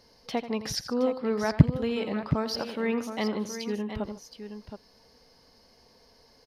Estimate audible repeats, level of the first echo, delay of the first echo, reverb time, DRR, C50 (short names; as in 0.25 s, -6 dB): 3, -13.0 dB, 84 ms, none, none, none